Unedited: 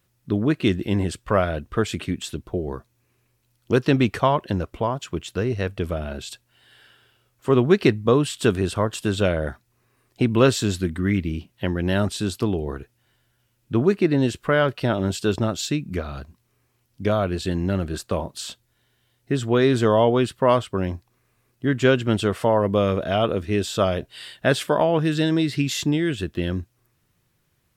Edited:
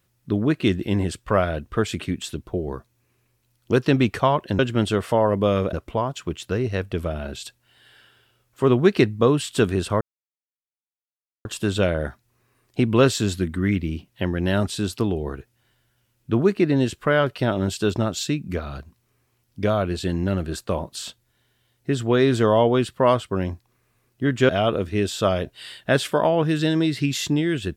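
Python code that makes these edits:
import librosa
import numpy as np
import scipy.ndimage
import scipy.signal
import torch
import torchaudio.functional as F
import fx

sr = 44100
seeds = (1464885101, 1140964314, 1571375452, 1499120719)

y = fx.edit(x, sr, fx.insert_silence(at_s=8.87, length_s=1.44),
    fx.move(start_s=21.91, length_s=1.14, to_s=4.59), tone=tone)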